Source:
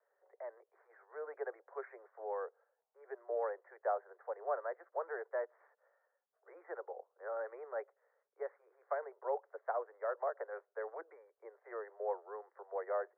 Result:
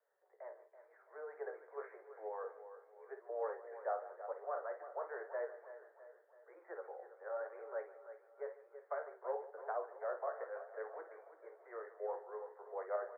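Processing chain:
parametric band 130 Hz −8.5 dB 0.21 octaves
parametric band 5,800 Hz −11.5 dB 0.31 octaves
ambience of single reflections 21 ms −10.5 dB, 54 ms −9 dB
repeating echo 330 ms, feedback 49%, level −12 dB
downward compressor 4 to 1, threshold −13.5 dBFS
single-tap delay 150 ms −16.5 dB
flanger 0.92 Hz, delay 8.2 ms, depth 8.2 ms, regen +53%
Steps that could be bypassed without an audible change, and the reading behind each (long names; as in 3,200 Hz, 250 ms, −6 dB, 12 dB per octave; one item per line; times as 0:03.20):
parametric band 130 Hz: nothing at its input below 320 Hz
parametric band 5,800 Hz: nothing at its input above 2,000 Hz
downward compressor, threshold −13.5 dBFS: peak of its input −22.0 dBFS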